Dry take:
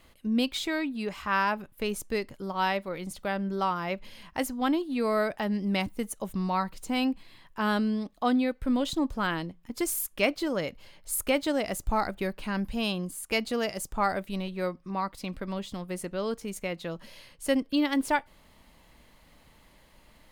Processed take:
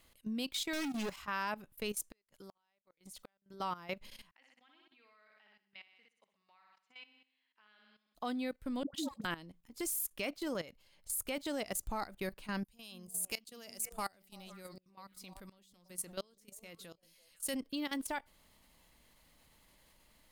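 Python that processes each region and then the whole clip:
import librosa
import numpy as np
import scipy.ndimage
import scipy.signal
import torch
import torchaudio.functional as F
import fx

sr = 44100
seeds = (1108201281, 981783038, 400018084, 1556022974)

y = fx.chain(x, sr, fx.leveller(passes=5),
    fx.comb_fb(f0_hz=280.0, decay_s=0.26, harmonics='all', damping=0.0, mix_pct=60), at=(0.73, 1.16))
y = fx.chain(y, sr, fx.gate_flip(shuts_db=-23.0, range_db=-40),
    fx.low_shelf(hz=400.0, db=-7.5), at=(1.93, 3.54))
y = fx.chain(y, sr, fx.ladder_lowpass(hz=3100.0, resonance_pct=30),
    fx.differentiator(),
    fx.room_flutter(wall_m=10.5, rt60_s=0.73), at=(4.31, 8.15))
y = fx.chain(y, sr, fx.highpass(hz=120.0, slope=12),
    fx.comb(ms=3.7, depth=0.45),
    fx.dispersion(late='highs', ms=115.0, hz=690.0), at=(8.83, 9.25))
y = fx.chain(y, sr, fx.high_shelf(hz=4100.0, db=12.0),
    fx.echo_stepped(ms=167, hz=230.0, octaves=1.4, feedback_pct=70, wet_db=-7.5),
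    fx.tremolo_decay(direction='swelling', hz=1.4, depth_db=23), at=(12.64, 17.54))
y = fx.high_shelf(y, sr, hz=3800.0, db=9.5)
y = fx.level_steps(y, sr, step_db=15)
y = y * librosa.db_to_amplitude(-6.5)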